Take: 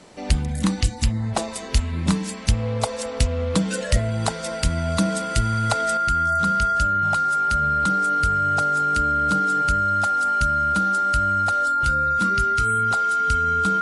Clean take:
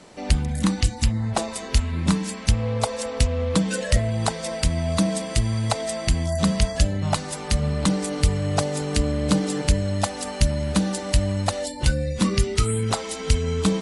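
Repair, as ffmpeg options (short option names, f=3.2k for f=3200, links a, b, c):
-af "bandreject=f=1.4k:w=30,asetnsamples=n=441:p=0,asendcmd='5.97 volume volume 6.5dB',volume=0dB"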